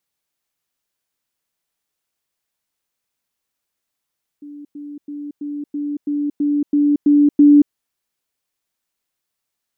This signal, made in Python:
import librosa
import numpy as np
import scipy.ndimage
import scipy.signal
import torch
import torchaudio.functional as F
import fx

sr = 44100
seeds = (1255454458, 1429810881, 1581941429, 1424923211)

y = fx.level_ladder(sr, hz=291.0, from_db=-32.5, step_db=3.0, steps=10, dwell_s=0.23, gap_s=0.1)